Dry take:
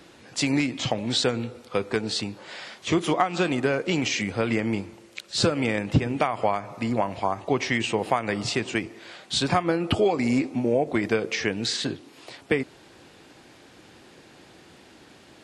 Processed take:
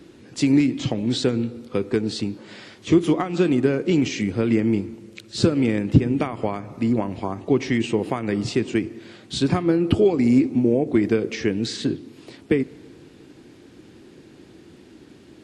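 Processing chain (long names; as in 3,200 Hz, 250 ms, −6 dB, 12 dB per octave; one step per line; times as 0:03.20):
low shelf with overshoot 490 Hz +8.5 dB, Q 1.5
on a send: convolution reverb RT60 2.0 s, pre-delay 3 ms, DRR 21 dB
on the sum: level −3.5 dB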